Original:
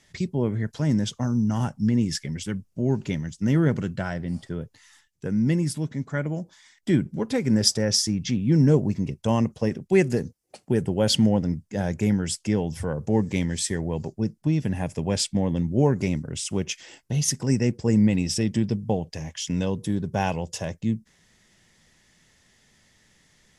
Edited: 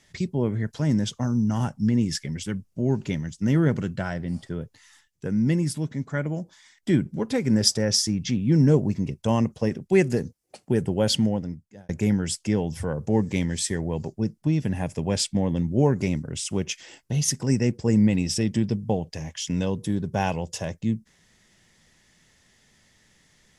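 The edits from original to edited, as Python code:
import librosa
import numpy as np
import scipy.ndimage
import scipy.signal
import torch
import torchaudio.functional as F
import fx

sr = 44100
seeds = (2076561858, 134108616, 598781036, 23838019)

y = fx.edit(x, sr, fx.fade_out_span(start_s=10.98, length_s=0.91), tone=tone)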